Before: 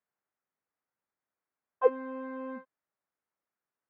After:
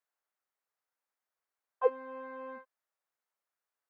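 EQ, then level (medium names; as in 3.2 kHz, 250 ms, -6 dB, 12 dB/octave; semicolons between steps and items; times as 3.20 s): high-pass 500 Hz 12 dB/octave; dynamic bell 1.6 kHz, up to -4 dB, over -45 dBFS, Q 0.87; 0.0 dB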